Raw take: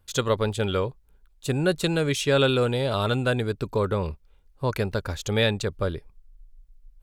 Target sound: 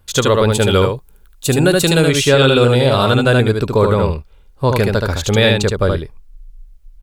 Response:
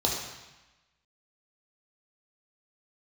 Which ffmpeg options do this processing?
-filter_complex "[0:a]asettb=1/sr,asplit=3[link_01][link_02][link_03];[link_01]atrim=end=0.504[link_04];[link_02]atrim=start=0.5:end=2.08,asetpts=PTS-STARTPTS,afade=type=in:duration=0.004:curve=qsin,afade=type=out:start_time=1.576:duration=0.004:curve=qsin,highshelf=frequency=6900:gain=10[link_05];[link_03]atrim=start=2.076[link_06];[link_04][link_05]acrossfade=duration=0.004:curve1=hsin:curve2=qsin[link_07];[link_07][link_06]acrossfade=duration=0.004:curve1=qsin:curve2=hsin,aecho=1:1:74:0.631,alimiter=level_in=11.5dB:limit=-1dB:release=50:level=0:latency=1,volume=-1dB"

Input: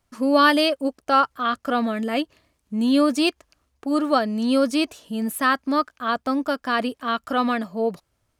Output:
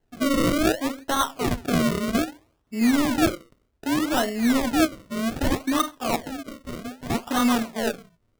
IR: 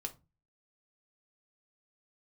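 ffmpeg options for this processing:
-filter_complex "[0:a]volume=18dB,asoftclip=hard,volume=-18dB,asettb=1/sr,asplit=3[link_01][link_02][link_03];[link_01]atrim=end=6.264[link_04];[link_02]atrim=start=6.26:end=7.1,asetpts=PTS-STARTPTS,afade=type=in:duration=0.004:curve=qsin,afade=type=out:start_time=0.836:duration=0.004:curve=qsin,acompressor=threshold=-32dB:ratio=10[link_05];[link_03]atrim=start=7.096[link_06];[link_04][link_05]acrossfade=duration=0.004:curve1=hsin:curve2=qsin[link_07];[link_07][link_06]acrossfade=duration=0.004:curve1=qsin:curve2=hsin[link_08];[1:a]atrim=start_sample=2205,afade=type=out:start_time=0.26:duration=0.01,atrim=end_sample=11907[link_09];[link_08][link_09]afir=irnorm=-1:irlink=0,acrusher=samples=36:mix=1:aa=0.000001:lfo=1:lforange=36:lforate=0.64,volume=1.5dB"

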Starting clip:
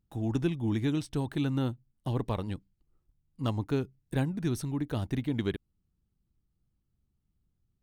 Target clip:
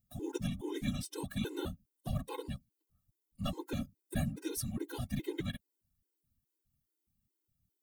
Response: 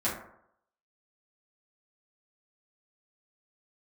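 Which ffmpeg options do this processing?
-af "aemphasis=mode=production:type=75kf,afftfilt=real='hypot(re,im)*cos(2*PI*random(0))':imag='hypot(re,im)*sin(2*PI*random(1))':win_size=512:overlap=0.75,afftfilt=real='re*gt(sin(2*PI*2.4*pts/sr)*(1-2*mod(floor(b*sr/1024/270),2)),0)':imag='im*gt(sin(2*PI*2.4*pts/sr)*(1-2*mod(floor(b*sr/1024/270),2)),0)':win_size=1024:overlap=0.75,volume=2dB"

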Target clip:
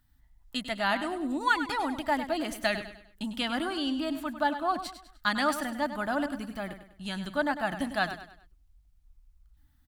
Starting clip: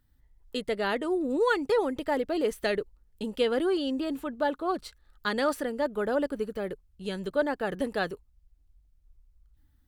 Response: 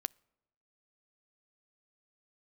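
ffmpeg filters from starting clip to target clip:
-filter_complex "[0:a]firequalizer=gain_entry='entry(300,0);entry(450,-23);entry(650,3)':delay=0.05:min_phase=1,asplit=2[link_01][link_02];[link_02]aecho=0:1:100|200|300|400:0.282|0.11|0.0429|0.0167[link_03];[link_01][link_03]amix=inputs=2:normalize=0"

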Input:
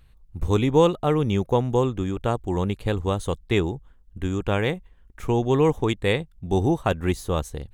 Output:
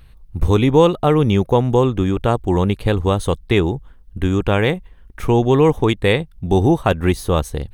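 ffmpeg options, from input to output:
ffmpeg -i in.wav -filter_complex "[0:a]equalizer=frequency=6000:width=4.8:gain=-2,bandreject=frequency=7300:width=5.5,asplit=2[link_01][link_02];[link_02]alimiter=limit=-15.5dB:level=0:latency=1:release=216,volume=3dB[link_03];[link_01][link_03]amix=inputs=2:normalize=0,volume=1.5dB" out.wav

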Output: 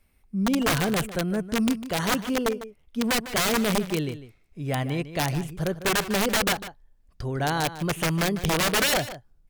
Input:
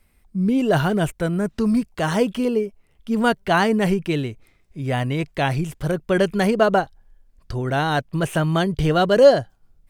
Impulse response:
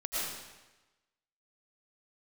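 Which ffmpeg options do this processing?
-filter_complex "[0:a]aeval=exprs='(mod(4.22*val(0)+1,2)-1)/4.22':channel_layout=same,asplit=2[link_01][link_02];[link_02]adelay=157.4,volume=-13dB,highshelf=frequency=4000:gain=-3.54[link_03];[link_01][link_03]amix=inputs=2:normalize=0,asetrate=45938,aresample=44100,volume=-4.5dB"

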